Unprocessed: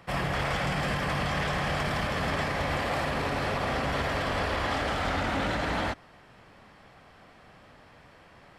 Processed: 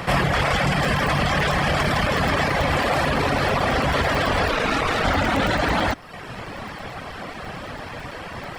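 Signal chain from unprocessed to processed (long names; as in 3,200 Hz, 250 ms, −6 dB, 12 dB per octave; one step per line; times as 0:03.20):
0:04.51–0:05.04: ring modulation 550 Hz
in parallel at +2 dB: compressor whose output falls as the input rises −40 dBFS, ratio −1
on the sum: reverb reduction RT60 0.88 s
regular buffer underruns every 0.11 s, samples 128, zero, from 0:00.74
level +8.5 dB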